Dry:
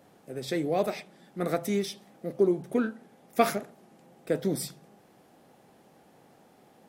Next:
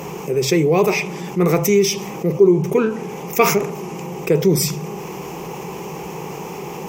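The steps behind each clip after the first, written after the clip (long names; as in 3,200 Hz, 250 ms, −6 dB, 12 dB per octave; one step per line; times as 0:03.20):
EQ curve with evenly spaced ripples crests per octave 0.76, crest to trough 14 dB
envelope flattener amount 50%
level +4 dB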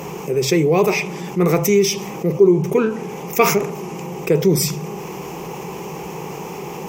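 no processing that can be heard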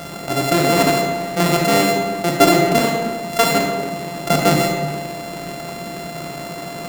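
samples sorted by size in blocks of 64 samples
comb and all-pass reverb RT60 1.3 s, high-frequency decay 0.45×, pre-delay 15 ms, DRR 2 dB
level −1 dB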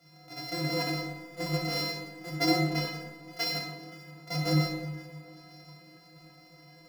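stiff-string resonator 150 Hz, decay 0.39 s, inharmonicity 0.03
delay that swaps between a low-pass and a high-pass 263 ms, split 1,200 Hz, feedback 75%, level −11 dB
multiband upward and downward expander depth 70%
level −4.5 dB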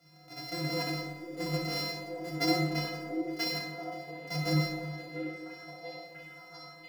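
echo through a band-pass that steps 688 ms, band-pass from 400 Hz, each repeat 0.7 octaves, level −3 dB
level −2.5 dB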